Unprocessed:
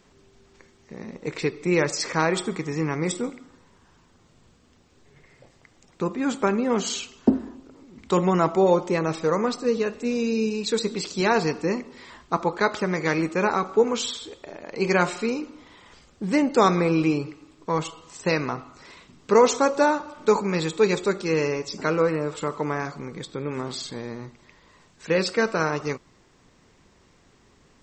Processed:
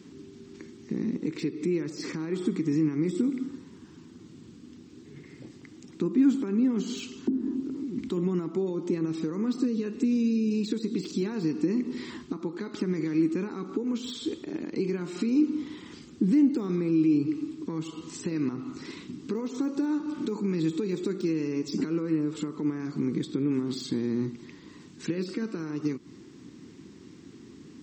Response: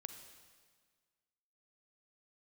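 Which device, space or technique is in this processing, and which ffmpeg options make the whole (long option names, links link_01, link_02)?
broadcast voice chain: -af "highpass=79,deesser=0.85,acompressor=threshold=-31dB:ratio=3,equalizer=frequency=4500:width_type=o:width=1.6:gain=4,alimiter=level_in=5.5dB:limit=-24dB:level=0:latency=1:release=188,volume=-5.5dB,highpass=frequency=160:poles=1,lowshelf=frequency=430:width_type=q:width=3:gain=11.5"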